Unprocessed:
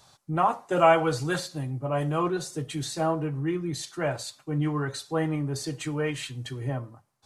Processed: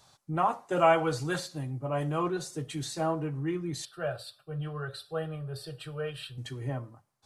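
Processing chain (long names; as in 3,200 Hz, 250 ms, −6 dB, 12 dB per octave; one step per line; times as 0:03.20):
0:03.85–0:06.38: phaser with its sweep stopped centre 1,400 Hz, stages 8
level −3.5 dB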